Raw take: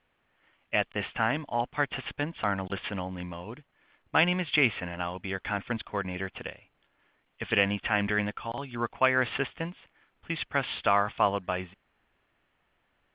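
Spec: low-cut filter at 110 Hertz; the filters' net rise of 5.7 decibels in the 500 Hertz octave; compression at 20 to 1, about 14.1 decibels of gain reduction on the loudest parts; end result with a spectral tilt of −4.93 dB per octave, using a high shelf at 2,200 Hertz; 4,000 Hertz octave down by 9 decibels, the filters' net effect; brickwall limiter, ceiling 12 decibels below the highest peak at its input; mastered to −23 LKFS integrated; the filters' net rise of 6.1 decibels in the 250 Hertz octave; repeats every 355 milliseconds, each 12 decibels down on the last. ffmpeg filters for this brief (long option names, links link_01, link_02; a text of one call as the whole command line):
ffmpeg -i in.wav -af "highpass=110,equalizer=frequency=250:width_type=o:gain=7,equalizer=frequency=500:width_type=o:gain=6,highshelf=frequency=2200:gain=-6,equalizer=frequency=4000:width_type=o:gain=-8.5,acompressor=threshold=-31dB:ratio=20,alimiter=level_in=5.5dB:limit=-24dB:level=0:latency=1,volume=-5.5dB,aecho=1:1:355|710|1065:0.251|0.0628|0.0157,volume=19dB" out.wav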